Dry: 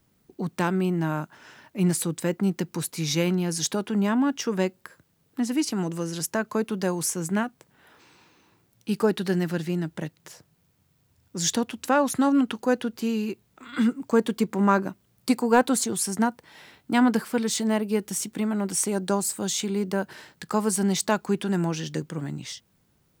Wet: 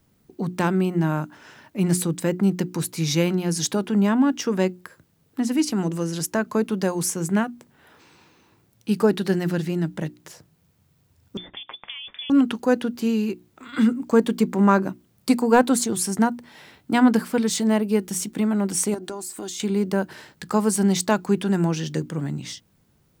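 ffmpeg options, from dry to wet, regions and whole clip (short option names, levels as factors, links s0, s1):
-filter_complex "[0:a]asettb=1/sr,asplit=3[s0][s1][s2];[s0]atrim=end=11.374[s3];[s1]atrim=start=11.37:end=12.3,asetpts=PTS-STARTPTS,afade=t=in:d=0.004:c=qsin,afade=t=out:st=0.926:d=0.004:c=qsin,lowshelf=f=160:g=-11.5,acompressor=threshold=0.0251:ratio=20:attack=3.2:release=140:knee=1:detection=peak,lowpass=f=3100:t=q:w=0.5098,lowpass=f=3100:t=q:w=0.6013,lowpass=f=3100:t=q:w=0.9,lowpass=f=3100:t=q:w=2.563,afreqshift=-3700[s4];[s2]atrim=start=12.296[s5];[s3][s4]acrossfade=d=0.004:c1=hsin:c2=qsin[s6];[s6][s5]acrossfade=d=0.004:c1=qsin:c2=hsin,asettb=1/sr,asplit=3[s7][s8][s9];[s7]atrim=end=18.944[s10];[s8]atrim=start=18.94:end=19.6,asetpts=PTS-STARTPTS,afade=t=in:d=0.004:c=qsin,afade=t=out:st=0.656:d=0.004:c=qsin,highpass=170,aecho=1:1:2.8:0.55,atrim=end_sample=29106,acompressor=threshold=0.0251:ratio=6:attack=3.2:release=140:knee=1:detection=peak[s11];[s9]atrim=start=19.596[s12];[s10][s11]acrossfade=d=0.004:c1=hsin:c2=qsin[s13];[s13][s12]acrossfade=d=0.004:c1=qsin:c2=hsin,lowshelf=f=430:g=4,bandreject=f=60:t=h:w=6,bandreject=f=120:t=h:w=6,bandreject=f=180:t=h:w=6,bandreject=f=240:t=h:w=6,bandreject=f=300:t=h:w=6,bandreject=f=360:t=h:w=6,volume=1.19"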